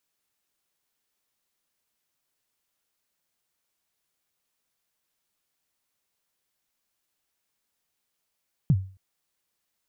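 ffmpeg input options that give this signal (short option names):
-f lavfi -i "aevalsrc='0.224*pow(10,-3*t/0.39)*sin(2*PI*(170*0.054/log(95/170)*(exp(log(95/170)*min(t,0.054)/0.054)-1)+95*max(t-0.054,0)))':d=0.27:s=44100"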